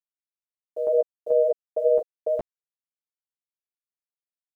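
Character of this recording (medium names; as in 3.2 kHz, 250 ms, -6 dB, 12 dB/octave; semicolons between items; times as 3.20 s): chopped level 2.3 Hz, depth 60%, duty 55%; a quantiser's noise floor 10-bit, dither none; a shimmering, thickened sound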